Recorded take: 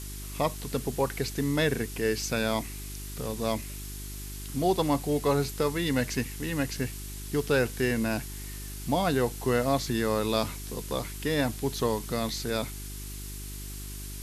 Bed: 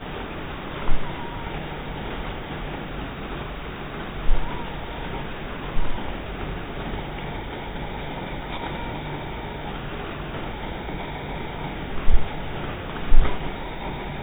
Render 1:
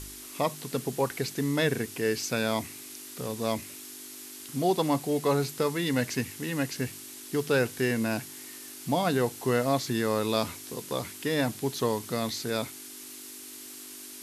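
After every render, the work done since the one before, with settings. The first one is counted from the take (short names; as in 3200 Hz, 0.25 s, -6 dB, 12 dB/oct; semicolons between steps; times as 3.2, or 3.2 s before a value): de-hum 50 Hz, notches 4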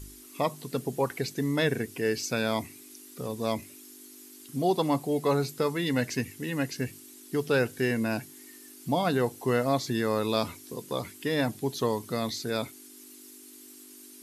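denoiser 10 dB, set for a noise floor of -44 dBFS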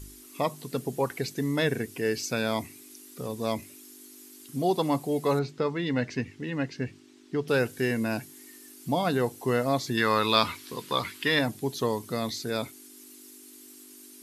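5.39–7.48 air absorption 150 m; 9.97–11.39 band shelf 2100 Hz +10 dB 2.6 oct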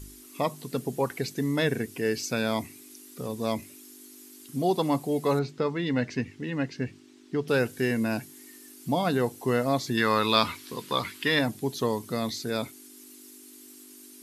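bell 220 Hz +2 dB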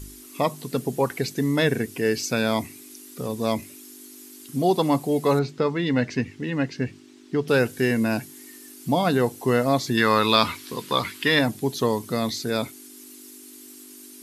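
gain +4.5 dB; limiter -3 dBFS, peak gain reduction 2 dB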